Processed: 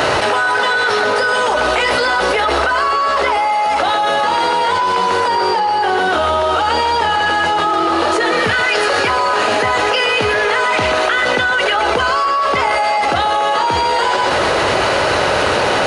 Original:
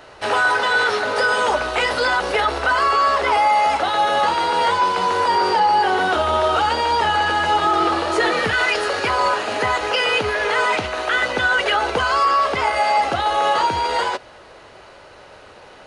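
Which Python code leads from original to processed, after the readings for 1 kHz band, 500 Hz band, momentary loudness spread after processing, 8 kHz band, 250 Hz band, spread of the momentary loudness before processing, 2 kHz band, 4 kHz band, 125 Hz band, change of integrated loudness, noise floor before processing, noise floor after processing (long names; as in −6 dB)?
+3.5 dB, +5.5 dB, 1 LU, +6.0 dB, +5.5 dB, 4 LU, +4.0 dB, +5.0 dB, +5.5 dB, +3.5 dB, −44 dBFS, −16 dBFS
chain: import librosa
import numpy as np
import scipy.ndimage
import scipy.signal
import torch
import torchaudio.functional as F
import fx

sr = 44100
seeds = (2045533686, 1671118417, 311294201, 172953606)

y = scipy.signal.sosfilt(scipy.signal.butter(2, 70.0, 'highpass', fs=sr, output='sos'), x)
y = y + 10.0 ** (-11.0 / 20.0) * np.pad(y, (int(126 * sr / 1000.0), 0))[:len(y)]
y = fx.env_flatten(y, sr, amount_pct=100)
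y = F.gain(torch.from_numpy(y), -1.5).numpy()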